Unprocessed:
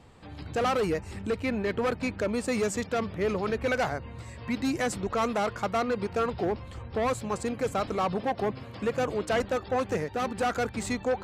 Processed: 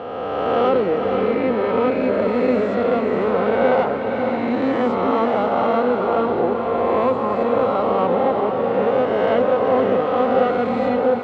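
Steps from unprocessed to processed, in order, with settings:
peak hold with a rise ahead of every peak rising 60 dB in 2.32 s
loudspeaker in its box 120–3,100 Hz, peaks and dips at 140 Hz −5 dB, 250 Hz +5 dB, 530 Hz +6 dB, 910 Hz +4 dB, 1,700 Hz −6 dB, 2,400 Hz −7 dB
feedback delay with all-pass diffusion 513 ms, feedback 41%, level −5 dB
level +2 dB

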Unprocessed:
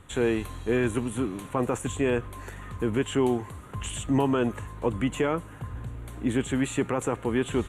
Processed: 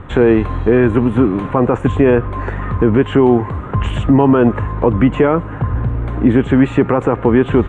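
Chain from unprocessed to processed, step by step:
low-pass filter 1,600 Hz 12 dB per octave
in parallel at −1.5 dB: downward compressor, threshold −32 dBFS, peak gain reduction 12.5 dB
on the sum: boost into a limiter +15 dB
level −1 dB

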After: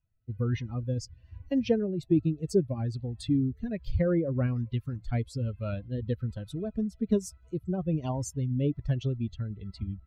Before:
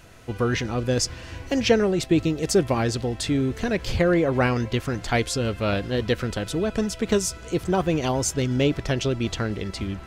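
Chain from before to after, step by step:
spectral dynamics exaggerated over time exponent 2
tilt shelving filter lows +7.5 dB, about 670 Hz
in parallel at +1 dB: downward compressor, threshold −31 dBFS, peak gain reduction 18 dB
on the sum: rotating-speaker cabinet horn 1.2 Hz
level −6.5 dB

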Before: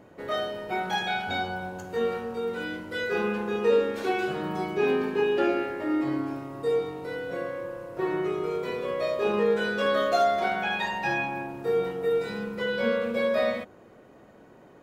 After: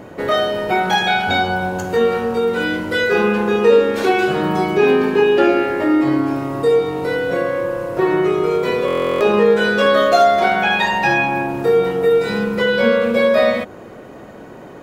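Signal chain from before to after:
in parallel at +3 dB: downward compressor, threshold −33 dBFS, peak gain reduction 14.5 dB
on the sum: buffer that repeats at 0:08.86, samples 1,024, times 14
level +8 dB

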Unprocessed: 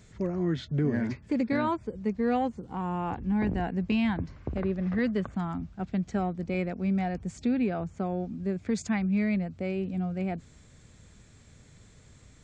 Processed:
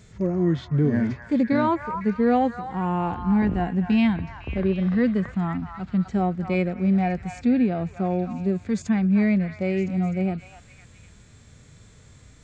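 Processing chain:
echo through a band-pass that steps 253 ms, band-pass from 1,200 Hz, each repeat 0.7 octaves, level −5 dB
harmonic and percussive parts rebalanced percussive −10 dB
level +7 dB

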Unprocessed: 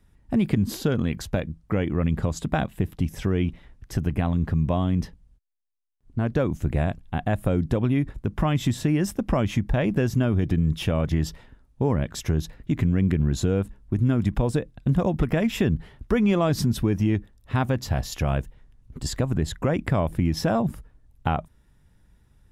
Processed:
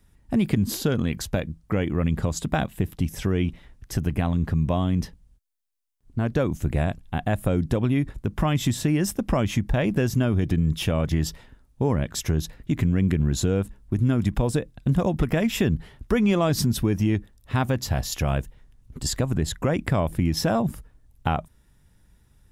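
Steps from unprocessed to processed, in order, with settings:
high-shelf EQ 4,200 Hz +7 dB

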